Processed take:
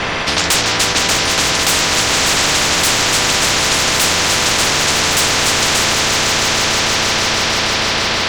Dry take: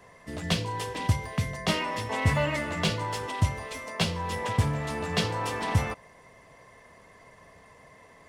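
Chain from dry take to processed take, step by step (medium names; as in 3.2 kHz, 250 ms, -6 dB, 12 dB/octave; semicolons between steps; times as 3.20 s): 1.52–1.92 s: inverse Chebyshev high-pass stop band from 380 Hz; sine folder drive 19 dB, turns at -10.5 dBFS; distance through air 220 m; on a send: echo with a slow build-up 159 ms, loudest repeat 5, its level -11 dB; on the sum: spectrum-flattening compressor 10:1; trim +1.5 dB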